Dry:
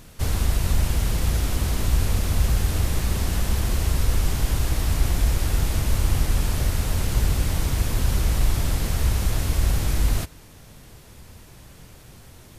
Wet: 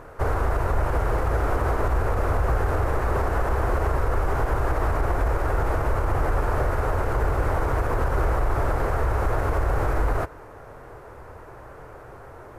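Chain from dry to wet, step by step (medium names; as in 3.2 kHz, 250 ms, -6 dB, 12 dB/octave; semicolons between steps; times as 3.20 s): FFT filter 130 Hz 0 dB, 190 Hz -8 dB, 420 Hz +12 dB, 1.4 kHz +12 dB, 3.4 kHz -14 dB; peak limiter -14 dBFS, peak gain reduction 7 dB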